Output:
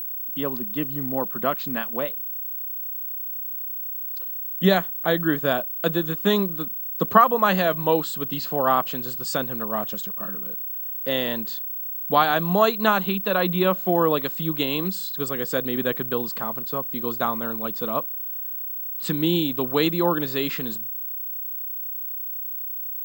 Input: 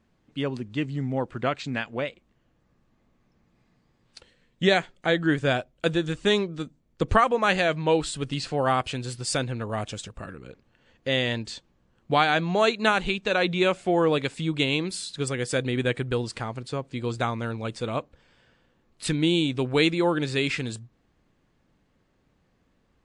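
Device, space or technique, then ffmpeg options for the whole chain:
old television with a line whistle: -filter_complex "[0:a]asettb=1/sr,asplit=3[link_01][link_02][link_03];[link_01]atrim=end=13.044[link_04];[link_02]atrim=start=13.04:end=13.77,asetpts=PTS-STARTPTS,afade=type=in:duration=0.004:curve=qsin,afade=type=out:start_time=0.726:duration=0.004:curve=qsin,acrossover=split=5200[link_05][link_06];[link_06]acompressor=threshold=-56dB:ratio=4:attack=1:release=60[link_07];[link_05][link_07]amix=inputs=2:normalize=0[link_08];[link_03]atrim=start=13.766[link_09];[link_04][link_08]acrossfade=duration=0.004:curve1=hsin:curve2=qsin[link_10];[link_10][link_09]acrossfade=duration=0.004:curve1=qsin:curve2=hsin,highpass=frequency=160:width=0.5412,highpass=frequency=160:width=1.3066,equalizer=frequency=190:width_type=q:width=4:gain=8,equalizer=frequency=630:width_type=q:width=4:gain=3,equalizer=frequency=1100:width_type=q:width=4:gain=8,equalizer=frequency=2300:width_type=q:width=4:gain=-9,equalizer=frequency=5800:width_type=q:width=4:gain=-4,lowpass=frequency=7900:width=0.5412,lowpass=frequency=7900:width=1.3066,aeval=exprs='val(0)+0.0398*sin(2*PI*15734*n/s)':channel_layout=same"

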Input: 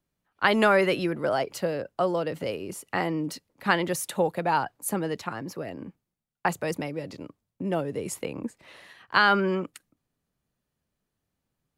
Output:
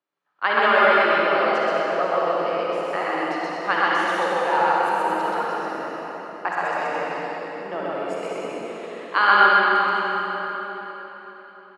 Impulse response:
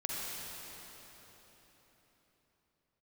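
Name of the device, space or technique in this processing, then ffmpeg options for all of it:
station announcement: -filter_complex "[0:a]highpass=460,lowpass=3600,equalizer=frequency=1200:width_type=o:width=0.47:gain=5,aecho=1:1:128.3|215.7:0.891|0.355[link_01];[1:a]atrim=start_sample=2205[link_02];[link_01][link_02]afir=irnorm=-1:irlink=0,asettb=1/sr,asplit=3[link_03][link_04][link_05];[link_03]atrim=end=7.244[link_06];[link_04]atrim=start=7.24:end=8.28,asetpts=PTS-STARTPTS,afade=type=in:duration=0.004:curve=qsin,afade=type=out:start_time=1.036:duration=0.004:curve=qsin,bandreject=frequency=6200:width=10[link_07];[link_05]atrim=start=8.276[link_08];[link_06][link_07]acrossfade=duration=0.004:curve1=hsin:curve2=qsin[link_09];[link_09][link_08]acrossfade=duration=0.004:curve1=qsin:curve2=hsin"

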